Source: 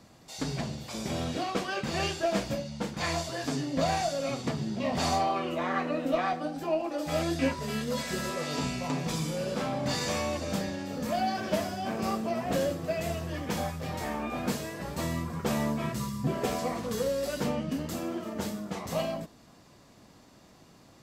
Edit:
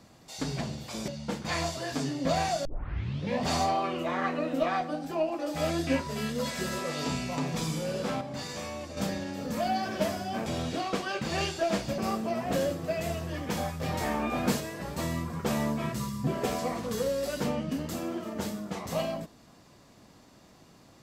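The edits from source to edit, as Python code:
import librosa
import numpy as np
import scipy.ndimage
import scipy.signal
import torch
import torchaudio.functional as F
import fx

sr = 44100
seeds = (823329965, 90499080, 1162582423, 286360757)

y = fx.edit(x, sr, fx.move(start_s=1.08, length_s=1.52, to_s=11.98),
    fx.tape_start(start_s=4.17, length_s=0.76),
    fx.clip_gain(start_s=9.73, length_s=0.76, db=-7.0),
    fx.clip_gain(start_s=13.8, length_s=0.8, db=3.5), tone=tone)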